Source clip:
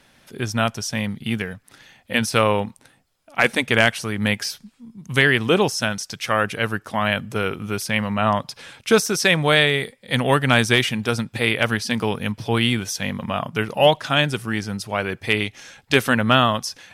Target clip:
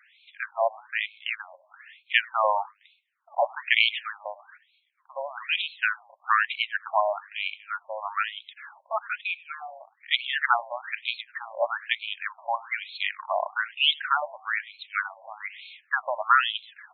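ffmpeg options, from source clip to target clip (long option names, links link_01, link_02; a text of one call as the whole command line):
ffmpeg -i in.wav -filter_complex "[0:a]asettb=1/sr,asplit=3[link_01][link_02][link_03];[link_01]atrim=end=9.214[link_04];[link_02]atrim=start=9.21:end=9.81,asetpts=PTS-STARTPTS,afade=type=in:duration=0.004:curve=qsin,afade=type=out:start_time=0.596:duration=0.004:curve=qsin,asplit=3[link_05][link_06][link_07];[link_05]bandpass=frequency=730:width_type=q:width=8,volume=0dB[link_08];[link_06]bandpass=frequency=1090:width_type=q:width=8,volume=-6dB[link_09];[link_07]bandpass=frequency=2440:width_type=q:width=8,volume=-9dB[link_10];[link_08][link_09][link_10]amix=inputs=3:normalize=0[link_11];[link_03]atrim=start=9.806[link_12];[link_04][link_11]acrossfade=duration=0.004:curve1=hsin:curve2=qsin[link_13];[link_13][link_12]acrossfade=duration=0.004:curve1=qsin:curve2=hsin,asplit=3[link_14][link_15][link_16];[link_15]adelay=99,afreqshift=88,volume=-23.5dB[link_17];[link_16]adelay=198,afreqshift=176,volume=-32.6dB[link_18];[link_14][link_17][link_18]amix=inputs=3:normalize=0,afftfilt=real='re*between(b*sr/1024,750*pow(3100/750,0.5+0.5*sin(2*PI*1.1*pts/sr))/1.41,750*pow(3100/750,0.5+0.5*sin(2*PI*1.1*pts/sr))*1.41)':imag='im*between(b*sr/1024,750*pow(3100/750,0.5+0.5*sin(2*PI*1.1*pts/sr))/1.41,750*pow(3100/750,0.5+0.5*sin(2*PI*1.1*pts/sr))*1.41)':win_size=1024:overlap=0.75,volume=2dB" out.wav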